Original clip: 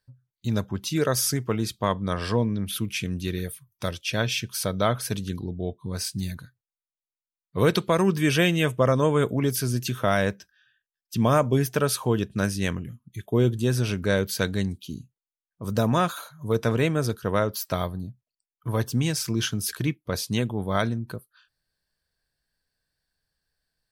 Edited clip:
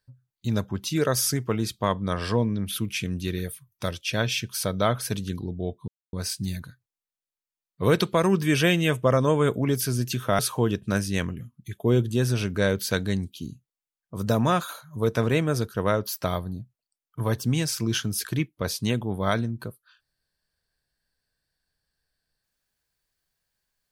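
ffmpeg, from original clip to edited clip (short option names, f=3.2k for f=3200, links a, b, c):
-filter_complex "[0:a]asplit=3[a][b][c];[a]atrim=end=5.88,asetpts=PTS-STARTPTS,afade=t=out:st=5.876:d=0.004:c=hsin,apad=pad_dur=0.25[d];[b]atrim=start=5.88:end=10.142,asetpts=PTS-STARTPTS,afade=t=in:d=0.004:c=hsin[e];[c]atrim=start=11.868[f];[d][e]concat=n=2:v=0:a=1[g];[g][f]acrossfade=d=0.004:c1=hsin:c2=hsin"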